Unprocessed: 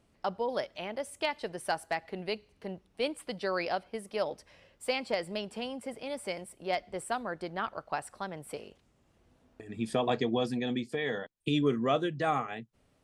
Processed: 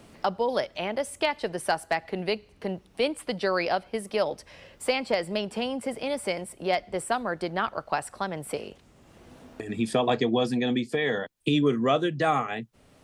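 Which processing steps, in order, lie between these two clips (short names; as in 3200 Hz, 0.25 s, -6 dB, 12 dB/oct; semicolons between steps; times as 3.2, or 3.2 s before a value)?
three-band squash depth 40%; gain +6 dB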